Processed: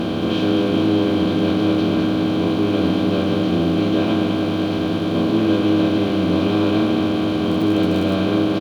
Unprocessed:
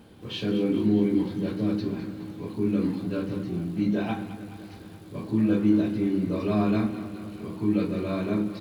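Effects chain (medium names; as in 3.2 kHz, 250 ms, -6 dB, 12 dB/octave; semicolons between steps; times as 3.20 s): spectral levelling over time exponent 0.2; 7.45–8.13 s: crackle 36 per s -25 dBFS; doubling 12 ms -5.5 dB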